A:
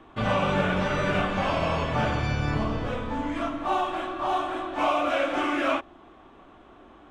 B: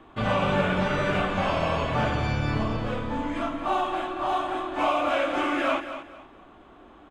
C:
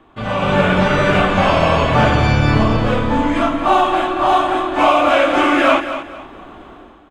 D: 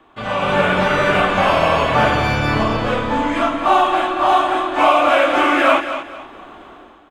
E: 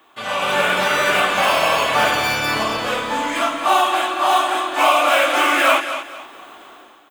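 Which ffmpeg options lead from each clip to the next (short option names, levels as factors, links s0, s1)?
-filter_complex "[0:a]bandreject=f=5700:w=12,asplit=2[s0][s1];[s1]aecho=0:1:228|456|684:0.282|0.0761|0.0205[s2];[s0][s2]amix=inputs=2:normalize=0"
-af "dynaudnorm=f=100:g=9:m=4.47,volume=1.12"
-filter_complex "[0:a]lowshelf=f=290:g=-9.5,acrossover=split=500|2900[s0][s1][s2];[s2]asoftclip=type=tanh:threshold=0.0316[s3];[s0][s1][s3]amix=inputs=3:normalize=0,volume=1.12"
-af "aemphasis=mode=production:type=riaa,volume=0.841"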